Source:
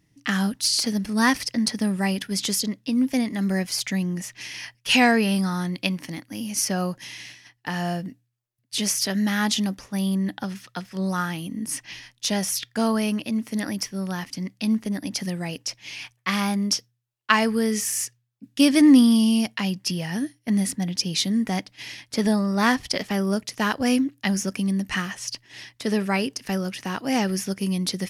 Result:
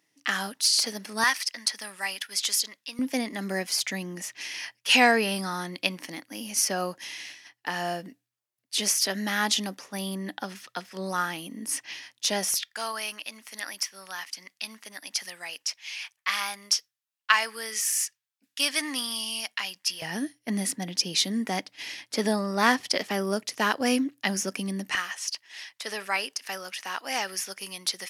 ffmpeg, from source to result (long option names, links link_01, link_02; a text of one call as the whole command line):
ffmpeg -i in.wav -af "asetnsamples=nb_out_samples=441:pad=0,asendcmd='1.24 highpass f 1100;2.99 highpass f 350;12.54 highpass f 1100;20.02 highpass f 300;24.95 highpass f 830',highpass=500" out.wav